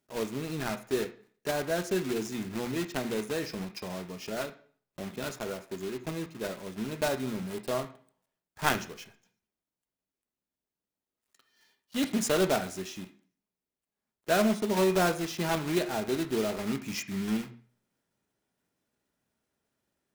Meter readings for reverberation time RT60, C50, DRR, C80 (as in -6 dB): 0.50 s, 13.0 dB, 6.0 dB, 17.5 dB